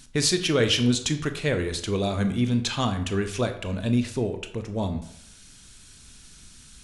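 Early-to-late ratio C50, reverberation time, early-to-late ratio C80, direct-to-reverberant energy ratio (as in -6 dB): 11.0 dB, 0.70 s, 13.5 dB, 7.5 dB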